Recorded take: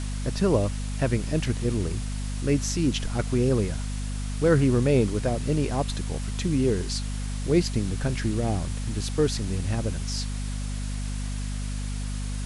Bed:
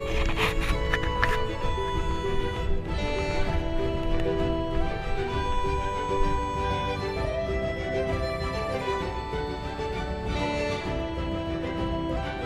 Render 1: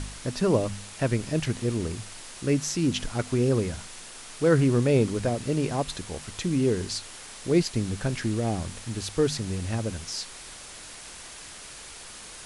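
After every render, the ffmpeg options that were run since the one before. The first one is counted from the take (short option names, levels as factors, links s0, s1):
-af "bandreject=f=50:t=h:w=4,bandreject=f=100:t=h:w=4,bandreject=f=150:t=h:w=4,bandreject=f=200:t=h:w=4,bandreject=f=250:t=h:w=4"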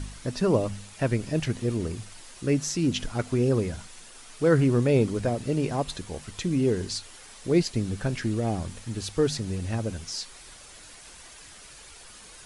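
-af "afftdn=nr=7:nf=-44"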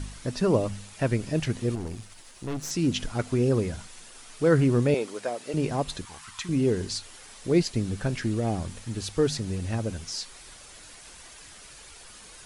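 -filter_complex "[0:a]asettb=1/sr,asplit=3[s0][s1][s2];[s0]atrim=end=1.754[s3];[s1]atrim=start=1.75:end=2.71,asetpts=PTS-STARTPTS,afade=t=in:d=0.004:c=qsin,afade=t=out:st=0.956:d=0.004:c=qsin,aeval=exprs='(tanh(28.2*val(0)+0.65)-tanh(0.65))/28.2':c=same[s4];[s2]atrim=start=2.706[s5];[s3][s4]acrossfade=d=0.004:c1=hsin:c2=qsin[s6];[s6][s5]acrossfade=d=0.004:c1=qsin:c2=hsin,asettb=1/sr,asplit=3[s7][s8][s9];[s7]atrim=end=4.944[s10];[s8]atrim=start=4.94:end=5.54,asetpts=PTS-STARTPTS,afade=t=in:d=0.004:c=qsin,afade=t=out:st=0.596:d=0.004:c=qsin,highpass=510[s11];[s9]atrim=start=5.536[s12];[s10][s11]acrossfade=d=0.004:c1=hsin:c2=qsin[s13];[s13][s12]acrossfade=d=0.004:c1=qsin:c2=hsin,asettb=1/sr,asplit=3[s14][s15][s16];[s14]atrim=end=6.054[s17];[s15]atrim=start=6.05:end=6.49,asetpts=PTS-STARTPTS,afade=t=in:d=0.004:c=qsin,afade=t=out:st=0.436:d=0.004:c=qsin,lowshelf=f=740:t=q:w=3:g=-12[s18];[s16]atrim=start=6.486[s19];[s17][s18]acrossfade=d=0.004:c1=hsin:c2=qsin[s20];[s20][s19]acrossfade=d=0.004:c1=qsin:c2=hsin"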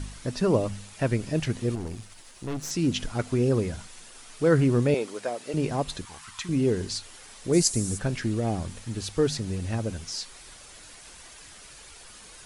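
-filter_complex "[0:a]asplit=3[s0][s1][s2];[s0]afade=t=out:st=7.52:d=0.02[s3];[s1]highshelf=f=5000:t=q:w=1.5:g=14,afade=t=in:st=7.52:d=0.02,afade=t=out:st=7.97:d=0.02[s4];[s2]afade=t=in:st=7.97:d=0.02[s5];[s3][s4][s5]amix=inputs=3:normalize=0"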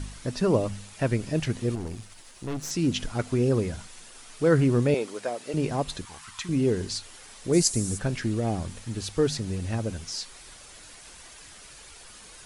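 -af anull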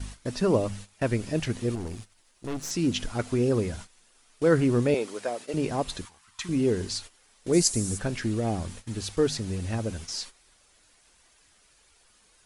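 -af "equalizer=f=140:t=o:w=0.37:g=-5,agate=range=0.2:threshold=0.01:ratio=16:detection=peak"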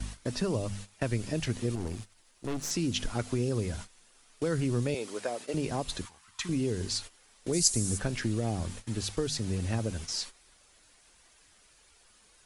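-filter_complex "[0:a]acrossover=split=130|3000[s0][s1][s2];[s1]acompressor=threshold=0.0355:ratio=6[s3];[s0][s3][s2]amix=inputs=3:normalize=0"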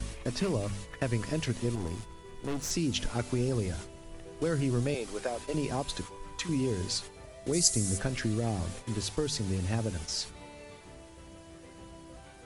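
-filter_complex "[1:a]volume=0.0944[s0];[0:a][s0]amix=inputs=2:normalize=0"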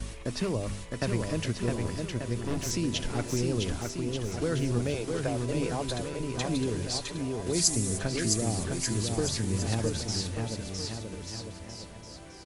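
-af "aecho=1:1:660|1188|1610|1948|2219:0.631|0.398|0.251|0.158|0.1"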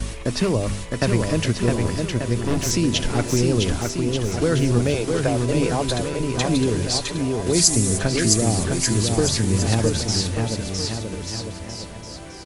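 -af "volume=2.99,alimiter=limit=0.794:level=0:latency=1"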